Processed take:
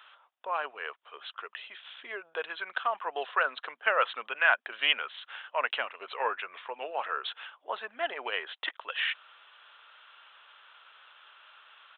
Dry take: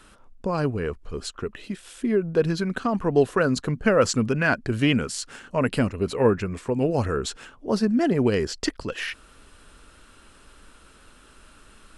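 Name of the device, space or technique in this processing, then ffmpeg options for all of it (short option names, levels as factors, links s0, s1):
musical greeting card: -af "aresample=8000,aresample=44100,highpass=f=750:w=0.5412,highpass=f=750:w=1.3066,equalizer=f=3300:t=o:w=0.4:g=5"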